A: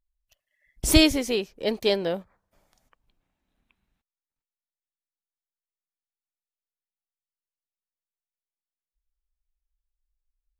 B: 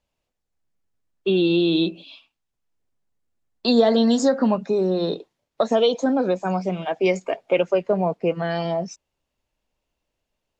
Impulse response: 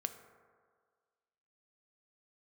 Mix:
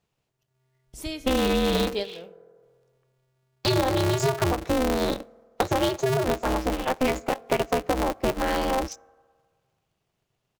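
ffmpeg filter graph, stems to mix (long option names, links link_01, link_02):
-filter_complex "[0:a]adelay=100,volume=-9dB,asplit=2[link_01][link_02];[link_02]volume=-7.5dB[link_03];[1:a]aeval=exprs='val(0)*sgn(sin(2*PI*130*n/s))':channel_layout=same,volume=0dB,asplit=3[link_04][link_05][link_06];[link_05]volume=-16.5dB[link_07];[link_06]apad=whole_len=471452[link_08];[link_01][link_08]sidechaingate=range=-33dB:threshold=-38dB:ratio=16:detection=peak[link_09];[2:a]atrim=start_sample=2205[link_10];[link_03][link_07]amix=inputs=2:normalize=0[link_11];[link_11][link_10]afir=irnorm=-1:irlink=0[link_12];[link_09][link_04][link_12]amix=inputs=3:normalize=0,acompressor=threshold=-20dB:ratio=6"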